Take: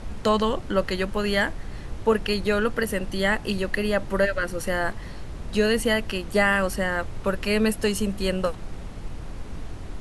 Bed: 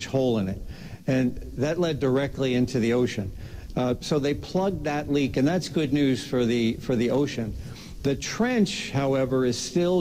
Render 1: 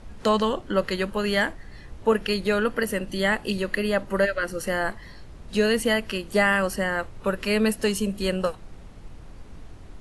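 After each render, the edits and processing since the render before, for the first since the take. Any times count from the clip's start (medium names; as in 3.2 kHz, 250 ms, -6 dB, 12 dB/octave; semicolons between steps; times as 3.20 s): noise print and reduce 8 dB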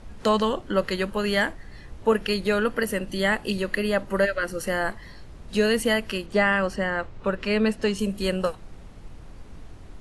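6.26–7.99 s: distance through air 89 m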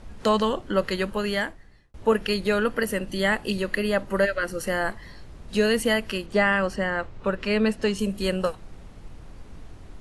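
1.12–1.94 s: fade out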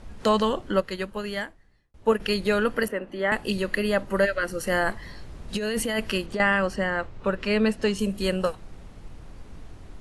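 0.80–2.20 s: upward expansion, over -33 dBFS; 2.88–3.32 s: three-band isolator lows -16 dB, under 250 Hz, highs -21 dB, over 2.4 kHz; 4.69–6.40 s: compressor with a negative ratio -25 dBFS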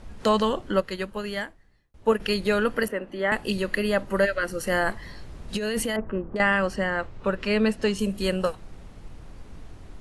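5.96–6.36 s: low-pass 1.3 kHz 24 dB/octave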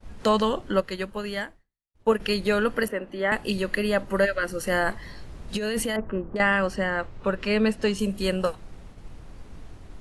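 expander -41 dBFS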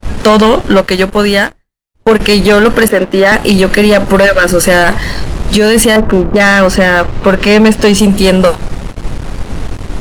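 waveshaping leveller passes 3; loudness maximiser +13.5 dB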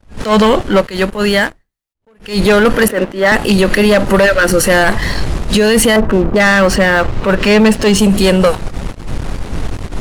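peak limiter -4 dBFS, peak gain reduction 3 dB; attacks held to a fixed rise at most 170 dB/s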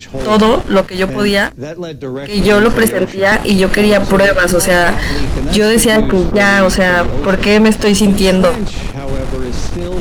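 add bed +0.5 dB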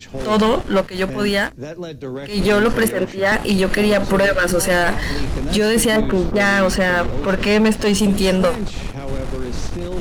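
trim -6 dB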